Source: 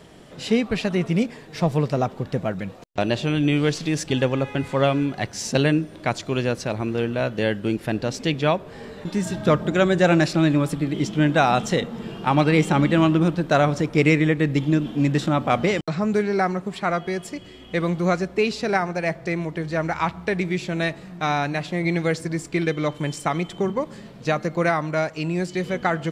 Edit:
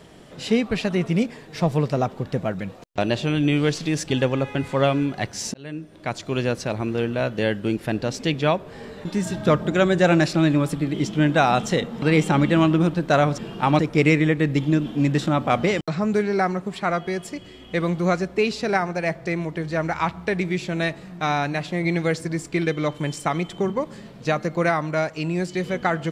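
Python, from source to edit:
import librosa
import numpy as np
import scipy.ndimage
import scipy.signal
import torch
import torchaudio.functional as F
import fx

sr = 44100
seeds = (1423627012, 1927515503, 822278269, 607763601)

y = fx.edit(x, sr, fx.fade_in_span(start_s=5.54, length_s=0.88),
    fx.move(start_s=12.02, length_s=0.41, to_s=13.79), tone=tone)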